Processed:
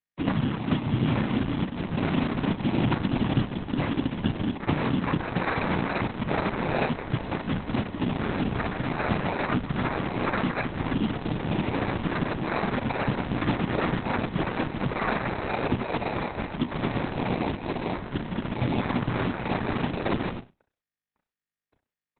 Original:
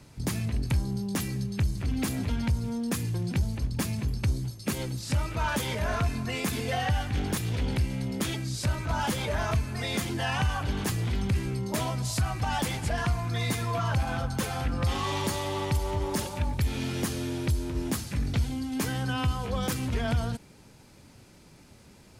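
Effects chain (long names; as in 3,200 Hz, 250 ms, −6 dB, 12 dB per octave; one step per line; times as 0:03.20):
in parallel at −1 dB: brickwall limiter −29 dBFS, peak gain reduction 11.5 dB
on the sum: downward compressor 3 to 1, threshold −26 dBFS, peak gain reduction 5.5 dB
bit-depth reduction 6 bits, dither none
cochlear-implant simulation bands 4
decimation without filtering 14×
Butterworth band-reject 4,700 Hz, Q 2.2
flutter between parallel walls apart 5.6 metres, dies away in 0.27 s
level +4.5 dB
Opus 6 kbit/s 48,000 Hz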